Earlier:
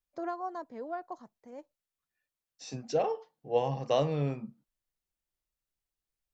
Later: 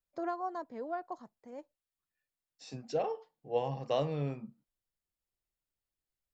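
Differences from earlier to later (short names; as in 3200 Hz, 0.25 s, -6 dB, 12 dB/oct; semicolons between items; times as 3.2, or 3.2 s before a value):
second voice -4.0 dB; master: add notch 6000 Hz, Q 11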